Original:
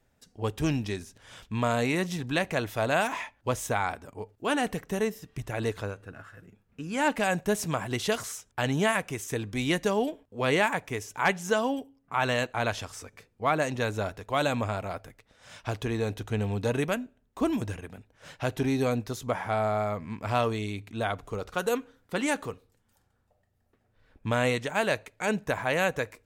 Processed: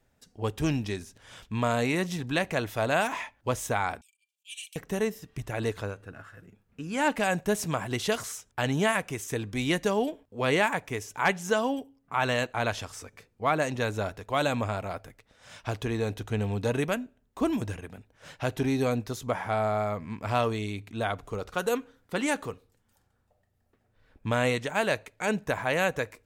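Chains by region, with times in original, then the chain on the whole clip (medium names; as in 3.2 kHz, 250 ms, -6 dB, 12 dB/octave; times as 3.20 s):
4.01–4.76 s: slow attack 122 ms + rippled Chebyshev high-pass 2.3 kHz, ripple 6 dB + comb 5.1 ms, depth 37%
whole clip: none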